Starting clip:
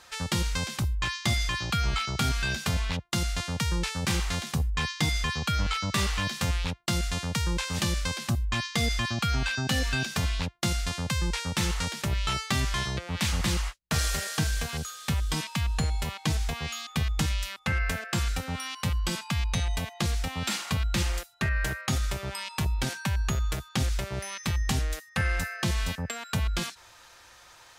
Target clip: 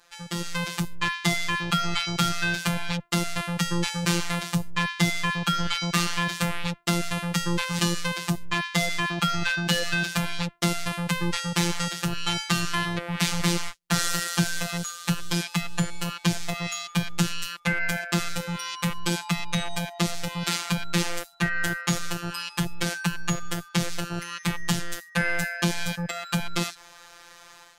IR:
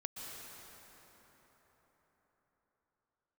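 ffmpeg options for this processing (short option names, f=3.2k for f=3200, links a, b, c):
-af "dynaudnorm=f=300:g=3:m=11.5dB,afftfilt=real='hypot(re,im)*cos(PI*b)':imag='0':win_size=1024:overlap=0.75,volume=-4dB"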